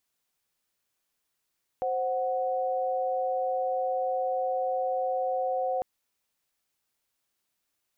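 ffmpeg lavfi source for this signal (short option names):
-f lavfi -i "aevalsrc='0.0376*(sin(2*PI*523.25*t)+sin(2*PI*739.99*t))':d=4:s=44100"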